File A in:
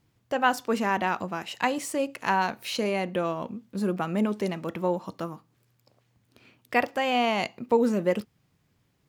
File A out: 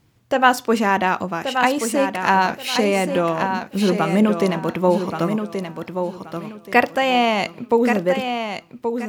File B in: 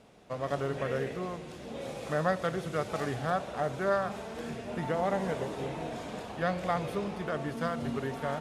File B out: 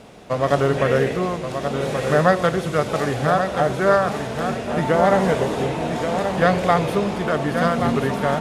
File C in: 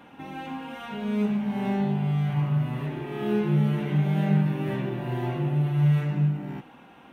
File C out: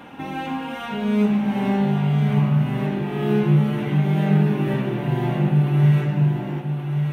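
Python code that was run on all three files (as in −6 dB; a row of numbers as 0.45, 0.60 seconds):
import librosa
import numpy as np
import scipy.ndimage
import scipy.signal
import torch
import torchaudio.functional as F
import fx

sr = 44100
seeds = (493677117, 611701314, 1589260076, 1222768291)

p1 = fx.rider(x, sr, range_db=4, speed_s=2.0)
p2 = p1 + fx.echo_feedback(p1, sr, ms=1128, feedback_pct=25, wet_db=-7, dry=0)
y = p2 * 10.0 ** (-20 / 20.0) / np.sqrt(np.mean(np.square(p2)))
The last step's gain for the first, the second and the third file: +7.0, +11.5, +4.5 decibels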